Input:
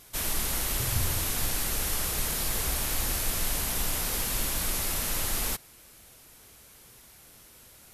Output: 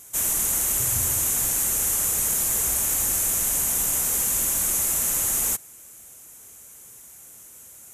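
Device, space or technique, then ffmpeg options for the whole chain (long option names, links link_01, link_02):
budget condenser microphone: -af "highpass=frequency=85:poles=1,highshelf=frequency=5700:width_type=q:width=3:gain=7"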